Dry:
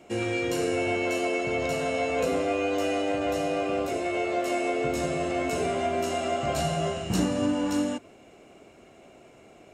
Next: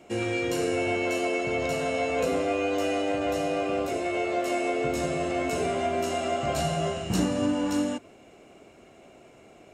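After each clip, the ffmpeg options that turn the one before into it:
ffmpeg -i in.wav -af anull out.wav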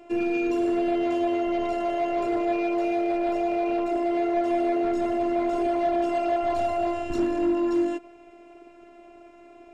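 ffmpeg -i in.wav -af "afftfilt=real='hypot(re,im)*cos(PI*b)':imag='0':win_size=512:overlap=0.75,volume=24dB,asoftclip=hard,volume=-24dB,aemphasis=mode=reproduction:type=75fm,volume=5.5dB" out.wav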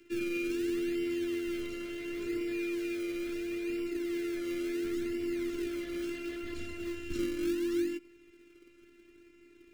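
ffmpeg -i in.wav -filter_complex "[0:a]acrossover=split=270|340|2000[link_01][link_02][link_03][link_04];[link_01]acrusher=samples=34:mix=1:aa=0.000001:lfo=1:lforange=34:lforate=0.72[link_05];[link_05][link_02][link_03][link_04]amix=inputs=4:normalize=0,asuperstop=centerf=780:order=4:qfactor=0.59,volume=-4.5dB" out.wav

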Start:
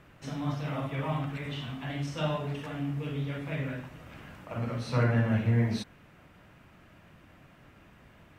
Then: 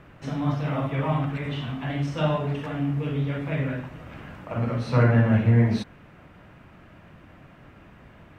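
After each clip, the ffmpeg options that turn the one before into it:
ffmpeg -i in.wav -af "highshelf=frequency=3700:gain=-10.5,volume=7dB" out.wav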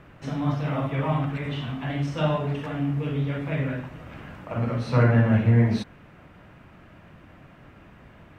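ffmpeg -i in.wav -af anull out.wav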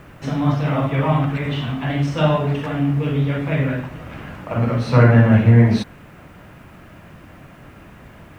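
ffmpeg -i in.wav -af "acrusher=bits=10:mix=0:aa=0.000001,volume=7dB" out.wav

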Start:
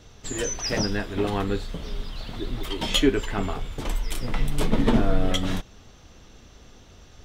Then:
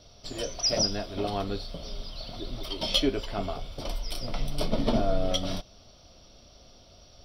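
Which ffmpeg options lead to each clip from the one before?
ffmpeg -i in.wav -af "superequalizer=8b=2.82:11b=0.501:13b=1.78:14b=3.55:15b=0.316,volume=-6.5dB" out.wav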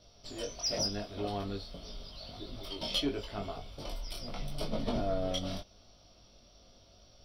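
ffmpeg -i in.wav -af "flanger=delay=19:depth=2.4:speed=0.85,asoftclip=type=tanh:threshold=-18dB,volume=-3dB" out.wav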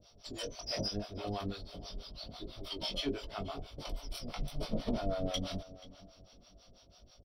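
ffmpeg -i in.wav -filter_complex "[0:a]acrossover=split=590[link_01][link_02];[link_01]aeval=exprs='val(0)*(1-1/2+1/2*cos(2*PI*6.1*n/s))':channel_layout=same[link_03];[link_02]aeval=exprs='val(0)*(1-1/2-1/2*cos(2*PI*6.1*n/s))':channel_layout=same[link_04];[link_03][link_04]amix=inputs=2:normalize=0,asplit=2[link_05][link_06];[link_06]adelay=482,lowpass=frequency=3300:poles=1,volume=-17dB,asplit=2[link_07][link_08];[link_08]adelay=482,lowpass=frequency=3300:poles=1,volume=0.28,asplit=2[link_09][link_10];[link_10]adelay=482,lowpass=frequency=3300:poles=1,volume=0.28[link_11];[link_05][link_07][link_09][link_11]amix=inputs=4:normalize=0,volume=3dB" out.wav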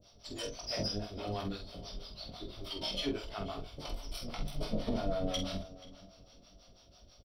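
ffmpeg -i in.wav -filter_complex "[0:a]asplit=2[link_01][link_02];[link_02]adelay=47,volume=-6.5dB[link_03];[link_01][link_03]amix=inputs=2:normalize=0" out.wav

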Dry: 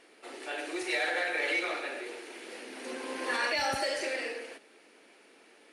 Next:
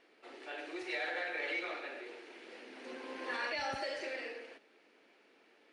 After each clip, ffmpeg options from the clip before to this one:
ffmpeg -i in.wav -af "lowpass=4700,volume=-7dB" out.wav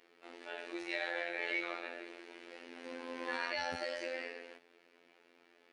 ffmpeg -i in.wav -af "afftfilt=real='hypot(re,im)*cos(PI*b)':imag='0':win_size=2048:overlap=0.75,volume=3dB" out.wav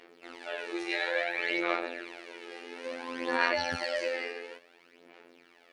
ffmpeg -i in.wav -af "aphaser=in_gain=1:out_gain=1:delay=2.5:decay=0.54:speed=0.58:type=sinusoidal,volume=6dB" out.wav

